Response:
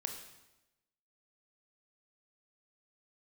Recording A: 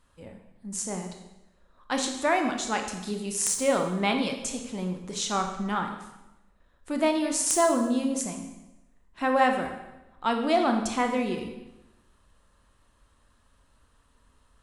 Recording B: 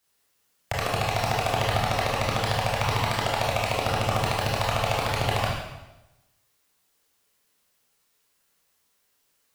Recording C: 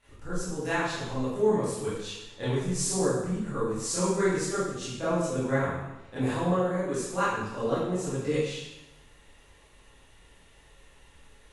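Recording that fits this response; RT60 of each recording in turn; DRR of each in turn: A; 1.0, 1.0, 1.0 seconds; 3.5, −4.5, −13.5 decibels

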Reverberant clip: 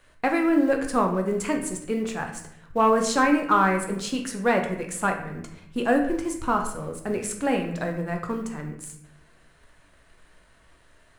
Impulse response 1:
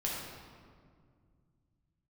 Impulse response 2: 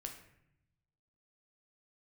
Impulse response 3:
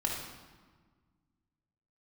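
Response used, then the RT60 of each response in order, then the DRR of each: 2; 2.0, 0.75, 1.5 seconds; −4.5, 3.0, −3.0 decibels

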